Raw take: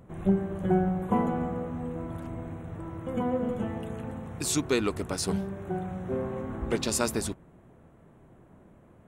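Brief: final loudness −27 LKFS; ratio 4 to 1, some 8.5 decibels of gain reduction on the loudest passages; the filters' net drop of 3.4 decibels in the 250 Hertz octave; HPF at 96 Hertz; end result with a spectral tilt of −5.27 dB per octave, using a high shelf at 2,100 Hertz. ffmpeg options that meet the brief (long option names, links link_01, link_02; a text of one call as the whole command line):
ffmpeg -i in.wav -af "highpass=96,equalizer=frequency=250:width_type=o:gain=-4.5,highshelf=frequency=2100:gain=-5,acompressor=threshold=-32dB:ratio=4,volume=10.5dB" out.wav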